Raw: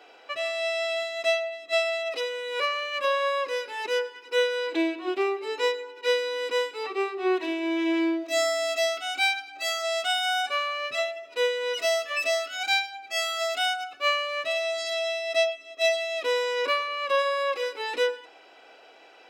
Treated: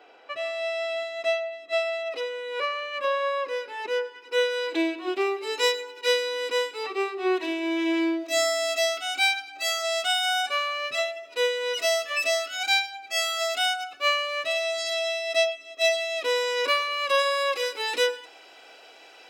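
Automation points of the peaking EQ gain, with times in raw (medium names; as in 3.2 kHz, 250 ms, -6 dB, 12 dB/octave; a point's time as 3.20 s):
peaking EQ 13 kHz 2.5 oct
4.01 s -8 dB
4.58 s +4 dB
5.19 s +4 dB
5.74 s +15 dB
6.34 s +4.5 dB
16.27 s +4.5 dB
16.92 s +11.5 dB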